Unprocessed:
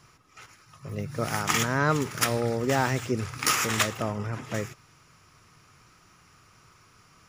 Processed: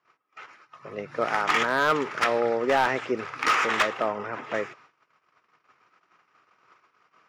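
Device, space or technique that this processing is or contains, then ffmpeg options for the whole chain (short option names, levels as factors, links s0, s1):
walkie-talkie: -af "highpass=430,lowpass=2400,asoftclip=type=hard:threshold=0.0841,agate=range=0.1:threshold=0.00112:ratio=16:detection=peak,volume=2.11"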